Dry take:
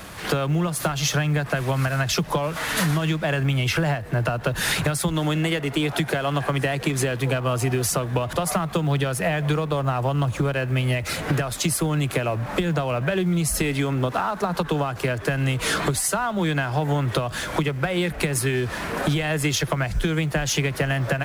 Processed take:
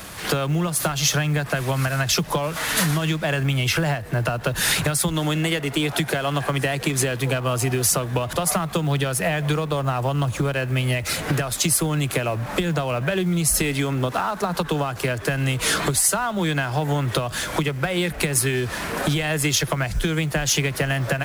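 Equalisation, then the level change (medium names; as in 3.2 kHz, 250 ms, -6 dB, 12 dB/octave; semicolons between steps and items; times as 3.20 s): treble shelf 3.8 kHz +6.5 dB; 0.0 dB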